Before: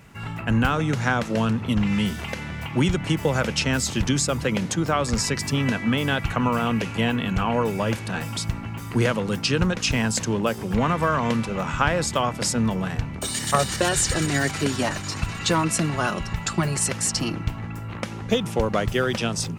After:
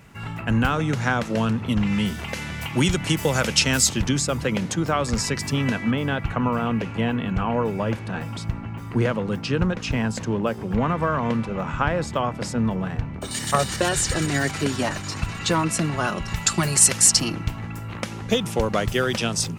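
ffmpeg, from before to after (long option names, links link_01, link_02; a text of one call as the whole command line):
ffmpeg -i in.wav -af "asetnsamples=nb_out_samples=441:pad=0,asendcmd='2.34 equalizer g 9.5;3.89 equalizer g -1.5;5.91 equalizer g -12.5;13.31 equalizer g -1.5;16.28 equalizer g 10.5;17.2 equalizer g 4.5',equalizer=frequency=12000:width_type=o:width=2.7:gain=-0.5" out.wav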